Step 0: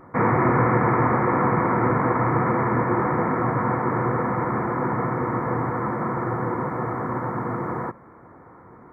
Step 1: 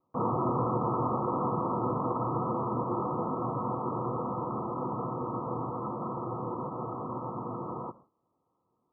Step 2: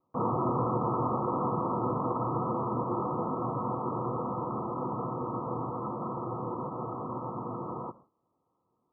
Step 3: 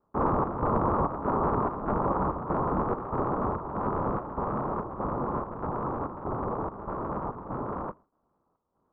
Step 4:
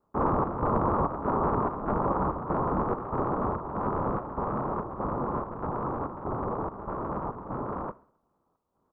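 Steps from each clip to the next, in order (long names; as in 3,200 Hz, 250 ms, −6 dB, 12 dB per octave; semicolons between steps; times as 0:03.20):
Chebyshev low-pass filter 1,300 Hz, order 10; noise gate with hold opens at −34 dBFS; low-shelf EQ 110 Hz −6 dB; level −8 dB
no processing that can be heard
sub-harmonics by changed cycles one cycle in 3, inverted; square-wave tremolo 1.6 Hz, depth 60%, duty 70%; Chebyshev low-pass filter 1,200 Hz, order 3; level +4.5 dB
repeating echo 67 ms, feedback 57%, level −24 dB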